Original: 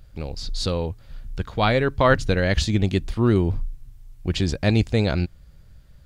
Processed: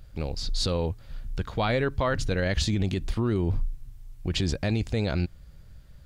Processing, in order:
brickwall limiter −16 dBFS, peak gain reduction 11.5 dB

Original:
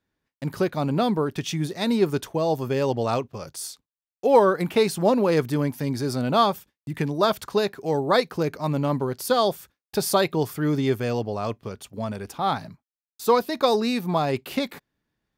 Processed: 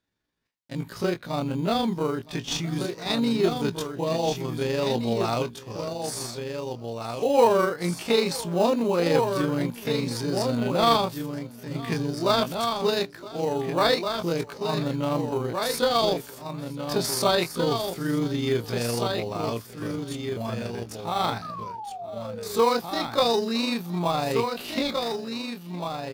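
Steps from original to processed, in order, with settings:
parametric band 4,300 Hz +7 dB 2.2 octaves
single-tap delay 1,043 ms −6.5 dB
in parallel at −11.5 dB: sample-rate reduction 3,400 Hz, jitter 0%
on the sum: sound drawn into the spectrogram fall, 0:12.60–0:13.31, 370–1,300 Hz −31 dBFS
time stretch by overlap-add 1.7×, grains 84 ms
on a send: single-tap delay 965 ms −20 dB
on the sum: level −4 dB

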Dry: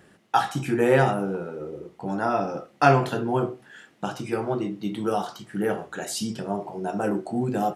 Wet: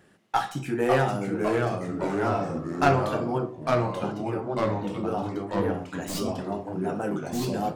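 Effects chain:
stylus tracing distortion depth 0.051 ms
0:03.38–0:05.74: high-shelf EQ 2,700 Hz −10 dB
delay with pitch and tempo change per echo 509 ms, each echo −2 semitones, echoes 3
level −4 dB

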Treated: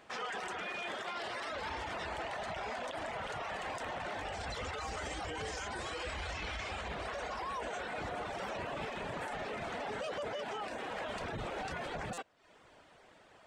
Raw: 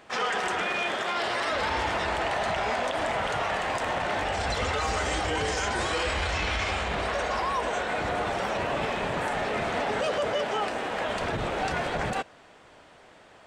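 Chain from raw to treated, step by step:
reverb reduction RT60 0.57 s
brickwall limiter −25.5 dBFS, peak gain reduction 7.5 dB
buffer that repeats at 0:12.13, samples 256, times 7
level −6 dB

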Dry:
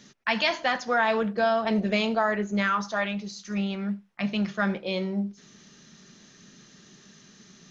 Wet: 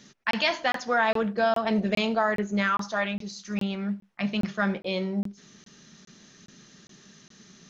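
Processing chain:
regular buffer underruns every 0.41 s, samples 1,024, zero, from 0:00.31

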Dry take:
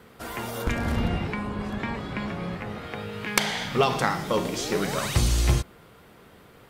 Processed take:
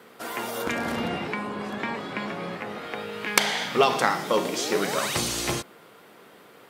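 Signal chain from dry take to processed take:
high-pass filter 260 Hz 12 dB per octave
level +2.5 dB

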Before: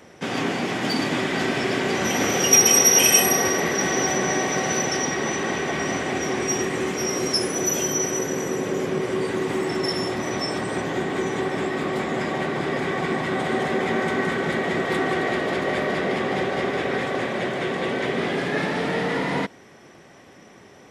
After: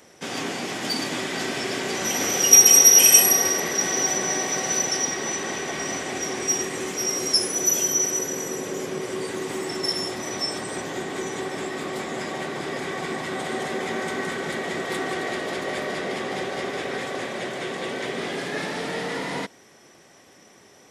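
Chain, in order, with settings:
bass and treble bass −4 dB, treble +10 dB
level −4.5 dB

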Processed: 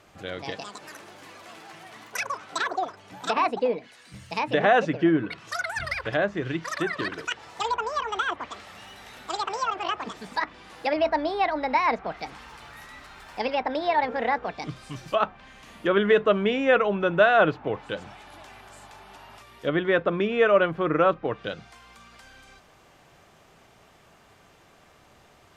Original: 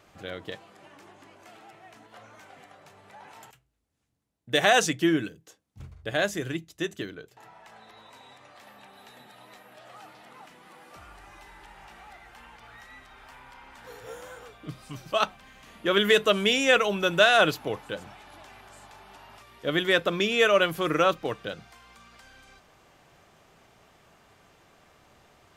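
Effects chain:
delay with pitch and tempo change per echo 268 ms, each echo +7 semitones, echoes 3
treble cut that deepens with the level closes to 1,600 Hz, closed at −23.5 dBFS
level +2.5 dB

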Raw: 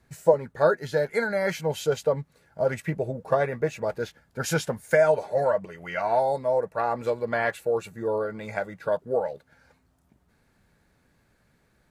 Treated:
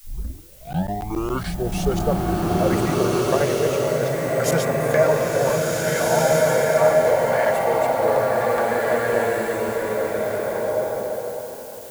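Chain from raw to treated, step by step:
turntable start at the beginning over 2.06 s
high-shelf EQ 8,100 Hz +10 dB
background noise blue −49 dBFS
regular buffer underruns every 0.14 s, samples 512, zero, from 0:00.73
slow-attack reverb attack 1,810 ms, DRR −6 dB

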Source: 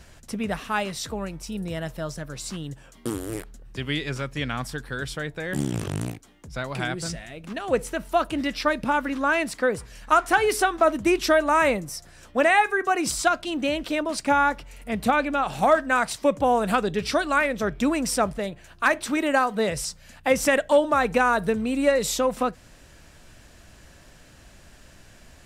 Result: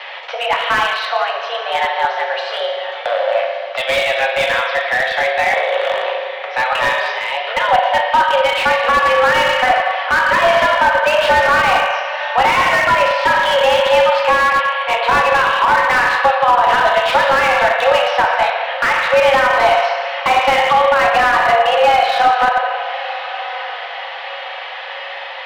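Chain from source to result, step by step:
tilt shelving filter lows −3 dB, about 1,400 Hz
downward compressor 2 to 1, threshold −46 dBFS, peak gain reduction 17 dB
feedback delay with all-pass diffusion 1,025 ms, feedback 47%, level −15 dB
feedback delay network reverb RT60 1.6 s, low-frequency decay 1.1×, high-frequency decay 0.9×, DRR −1 dB
single-sideband voice off tune +250 Hz 310–3,300 Hz
boost into a limiter +25 dB
slew-rate limiting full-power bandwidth 490 Hz
level −1 dB

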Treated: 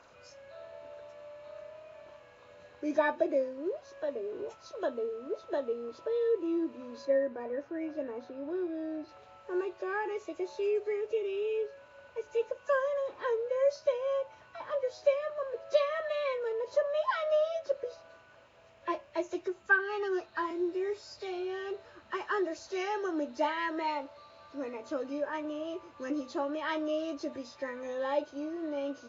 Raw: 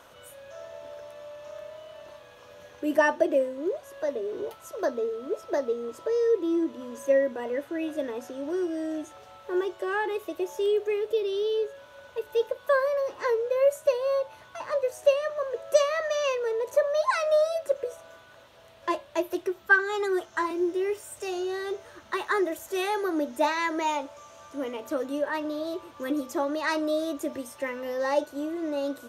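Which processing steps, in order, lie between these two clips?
hearing-aid frequency compression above 1,700 Hz 1.5 to 1
0:07.05–0:09.09: high-shelf EQ 3,500 Hz −12 dB
level −5.5 dB

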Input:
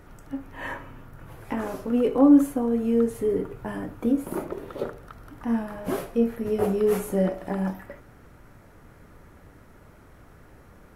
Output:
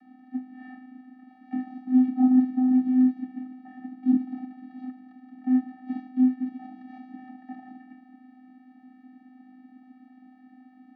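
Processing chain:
compressor on every frequency bin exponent 0.6
Butterworth low-pass 3,900 Hz 36 dB per octave
spectral tilt +3 dB per octave
phaser with its sweep stopped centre 1,900 Hz, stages 8
hollow resonant body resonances 230/590 Hz, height 10 dB, ringing for 55 ms
on a send: bucket-brigade delay 161 ms, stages 2,048, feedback 76%, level −16.5 dB
on the sum: channel vocoder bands 16, square 255 Hz
expander for the loud parts 1.5 to 1, over −36 dBFS
level +3.5 dB

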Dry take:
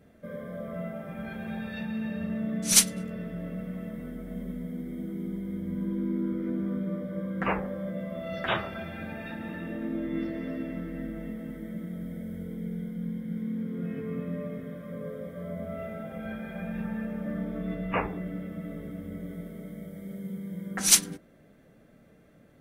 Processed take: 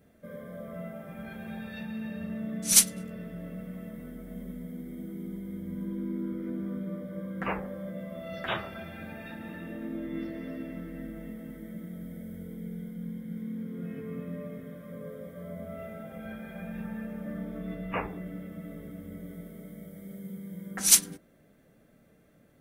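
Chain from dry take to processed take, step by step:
high-shelf EQ 7,500 Hz +8.5 dB
level −4 dB

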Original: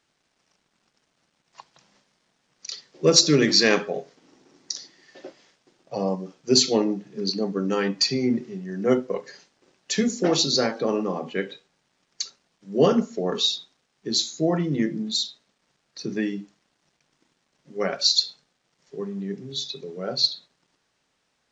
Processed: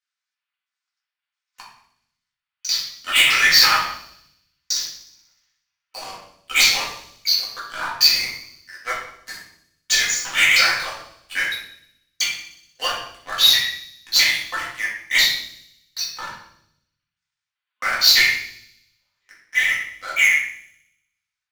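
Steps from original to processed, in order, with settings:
pitch shifter gated in a rhythm −11.5 semitones, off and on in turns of 330 ms
high-pass filter 1,200 Hz 24 dB per octave
leveller curve on the samples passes 5
on a send: delay with a high-pass on its return 61 ms, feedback 68%, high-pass 3,600 Hz, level −16 dB
on the sum: rectangular room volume 140 cubic metres, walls mixed, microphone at 2 metres
level −10 dB

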